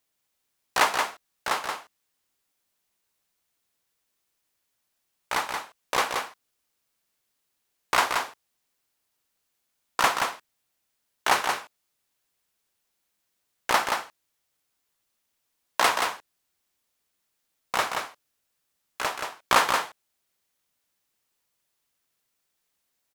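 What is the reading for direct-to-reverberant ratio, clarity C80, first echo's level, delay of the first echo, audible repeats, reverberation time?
none, none, -5.0 dB, 0.177 s, 1, none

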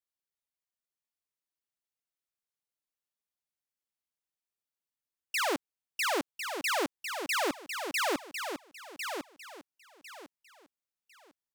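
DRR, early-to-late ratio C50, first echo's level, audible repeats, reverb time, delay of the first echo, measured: none, none, -7.0 dB, 3, none, 1.051 s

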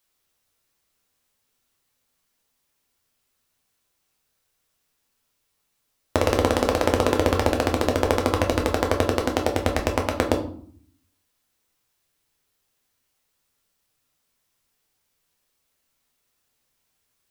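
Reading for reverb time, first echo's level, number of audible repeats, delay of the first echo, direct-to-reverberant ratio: 0.55 s, none, none, none, 2.0 dB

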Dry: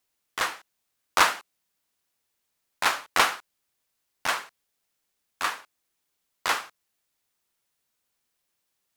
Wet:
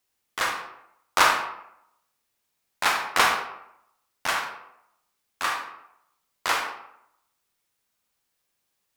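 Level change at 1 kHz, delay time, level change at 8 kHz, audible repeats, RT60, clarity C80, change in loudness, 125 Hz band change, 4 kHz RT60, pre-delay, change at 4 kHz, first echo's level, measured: +2.5 dB, none, +1.0 dB, none, 0.75 s, 8.0 dB, +1.0 dB, +2.5 dB, 0.45 s, 29 ms, +1.5 dB, none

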